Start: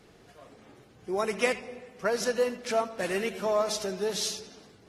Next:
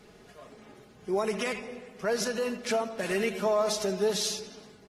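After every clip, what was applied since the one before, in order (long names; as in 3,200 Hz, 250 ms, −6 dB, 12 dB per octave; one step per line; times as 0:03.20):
brickwall limiter −22 dBFS, peak gain reduction 10.5 dB
comb filter 4.8 ms, depth 42%
level +1.5 dB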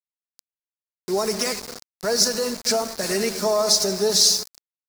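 centre clipping without the shift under −37 dBFS
high shelf with overshoot 3,800 Hz +7 dB, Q 3
level +5 dB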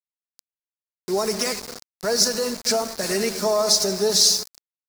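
no processing that can be heard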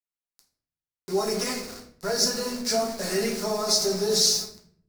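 convolution reverb RT60 0.60 s, pre-delay 6 ms, DRR −2 dB
level −7.5 dB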